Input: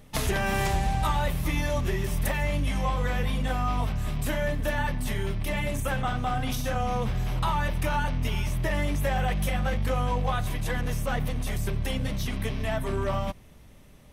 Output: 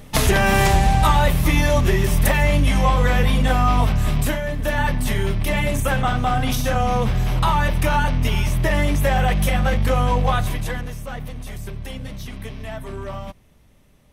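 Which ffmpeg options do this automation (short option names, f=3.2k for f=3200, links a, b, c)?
-af "volume=17dB,afade=t=out:st=4.19:d=0.23:silence=0.354813,afade=t=in:st=4.42:d=0.46:silence=0.446684,afade=t=out:st=10.36:d=0.56:silence=0.281838"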